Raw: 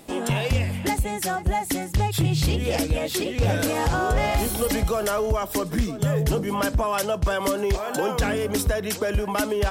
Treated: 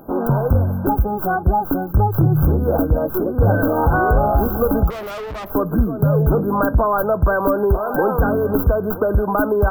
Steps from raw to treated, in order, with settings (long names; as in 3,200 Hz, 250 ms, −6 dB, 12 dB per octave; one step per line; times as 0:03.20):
stylus tracing distortion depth 0.11 ms
brick-wall band-stop 1,600–12,000 Hz
0:04.90–0:05.50: tube saturation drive 34 dB, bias 0.75
level +7 dB